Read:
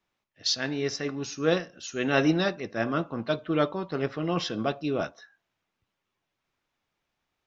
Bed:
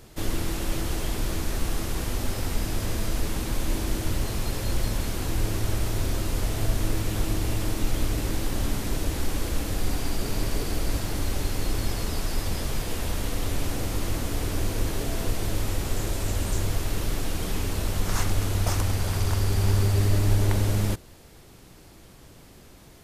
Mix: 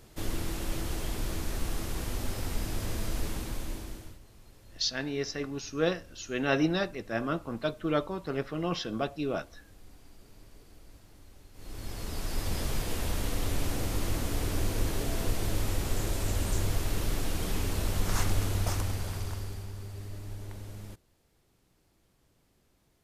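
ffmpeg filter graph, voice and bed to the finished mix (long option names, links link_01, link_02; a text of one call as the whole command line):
ffmpeg -i stem1.wav -i stem2.wav -filter_complex "[0:a]adelay=4350,volume=-3.5dB[link_01];[1:a]volume=18.5dB,afade=type=out:start_time=3.26:duration=0.93:silence=0.0841395,afade=type=in:start_time=11.53:duration=1.07:silence=0.0630957,afade=type=out:start_time=18.32:duration=1.37:silence=0.149624[link_02];[link_01][link_02]amix=inputs=2:normalize=0" out.wav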